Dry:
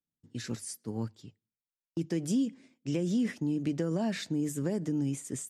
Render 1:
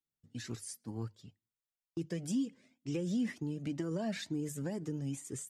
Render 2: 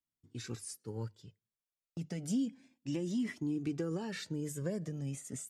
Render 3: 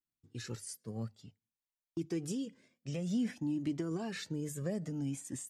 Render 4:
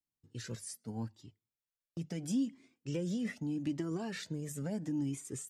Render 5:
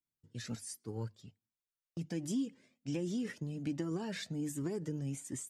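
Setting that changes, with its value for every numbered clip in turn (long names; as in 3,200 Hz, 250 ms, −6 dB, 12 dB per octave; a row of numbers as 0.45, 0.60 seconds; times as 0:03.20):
flanger whose copies keep moving one way, speed: 2.1, 0.31, 0.54, 0.79, 1.3 Hertz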